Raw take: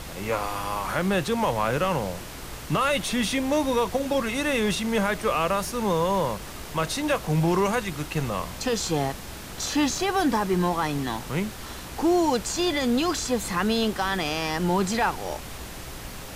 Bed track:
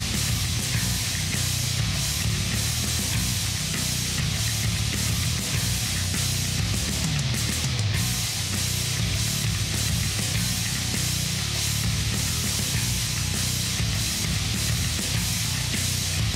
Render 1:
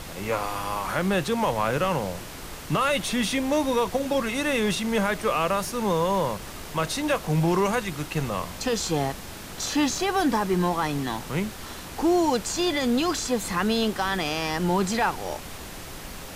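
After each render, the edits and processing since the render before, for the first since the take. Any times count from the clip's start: de-hum 60 Hz, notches 2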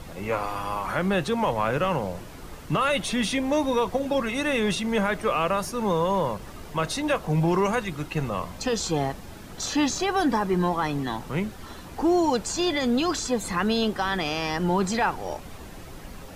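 noise reduction 9 dB, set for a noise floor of -39 dBFS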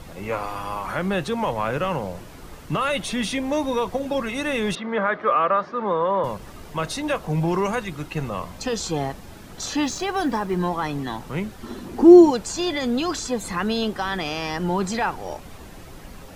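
4.75–6.24 s: cabinet simulation 230–3300 Hz, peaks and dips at 570 Hz +4 dB, 1.2 kHz +8 dB, 1.7 kHz +4 dB, 2.7 kHz -8 dB; 9.83–10.57 s: companding laws mixed up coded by A; 11.63–12.31 s: small resonant body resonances 240/350 Hz, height 14 dB, ringing for 50 ms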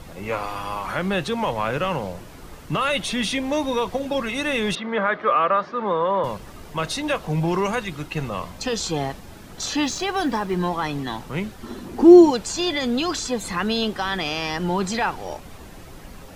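dynamic bell 3.4 kHz, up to +4 dB, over -42 dBFS, Q 0.85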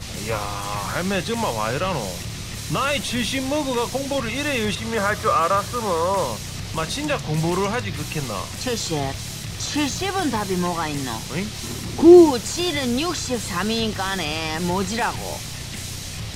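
add bed track -7 dB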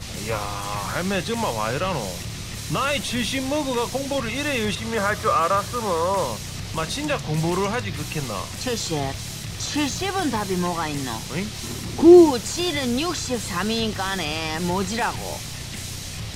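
trim -1 dB

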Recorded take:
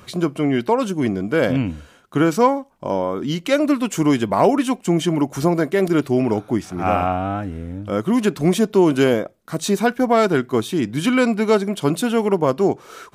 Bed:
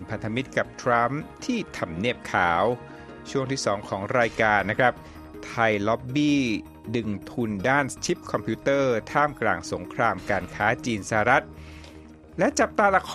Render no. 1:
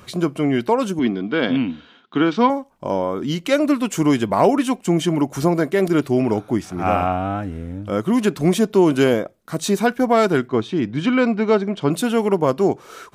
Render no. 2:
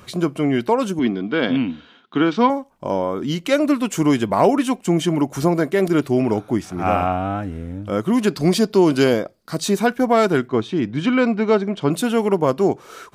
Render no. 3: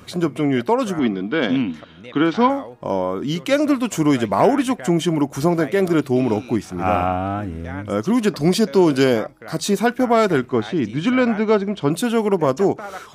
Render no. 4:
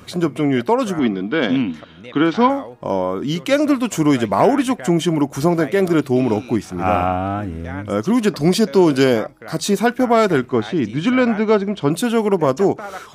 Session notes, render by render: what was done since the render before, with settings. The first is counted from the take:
0.99–2.50 s: cabinet simulation 210–4400 Hz, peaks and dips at 240 Hz +6 dB, 560 Hz -9 dB, 3.5 kHz +10 dB; 10.48–11.91 s: distance through air 150 m
8.27–9.64 s: peaking EQ 4.7 kHz +14 dB 0.26 oct
add bed -13.5 dB
trim +1.5 dB; peak limiter -2 dBFS, peak gain reduction 1 dB

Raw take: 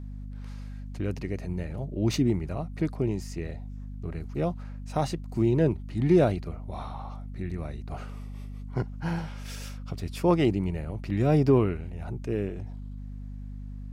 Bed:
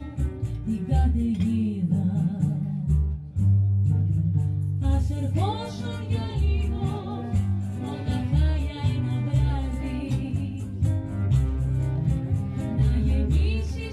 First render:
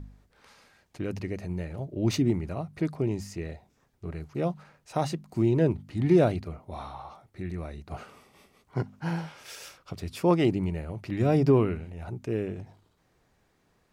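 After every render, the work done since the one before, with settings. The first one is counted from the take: de-hum 50 Hz, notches 5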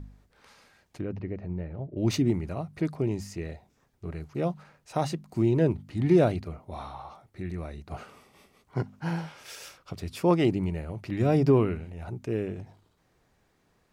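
1.01–1.97 s: tape spacing loss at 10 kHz 38 dB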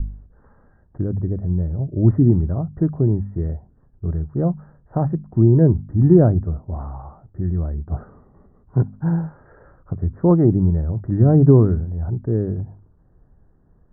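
steep low-pass 1.8 kHz 96 dB/octave; tilt EQ -4.5 dB/octave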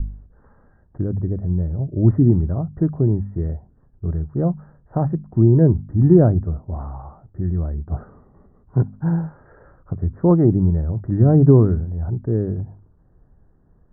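no audible change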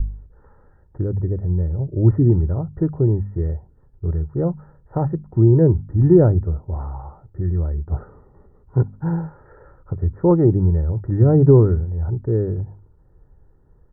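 comb 2.2 ms, depth 47%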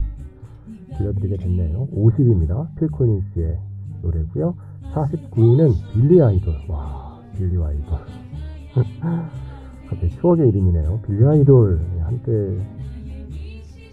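add bed -10 dB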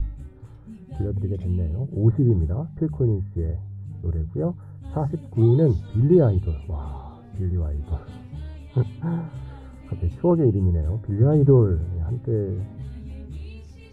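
trim -4 dB

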